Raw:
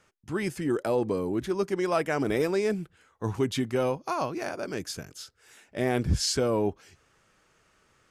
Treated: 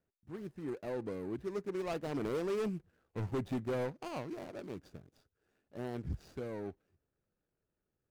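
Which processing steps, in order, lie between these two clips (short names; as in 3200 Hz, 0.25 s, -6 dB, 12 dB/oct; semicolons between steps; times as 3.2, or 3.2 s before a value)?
median filter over 41 samples; Doppler pass-by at 3.13, 9 m/s, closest 9.7 m; overloaded stage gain 27 dB; gain -4 dB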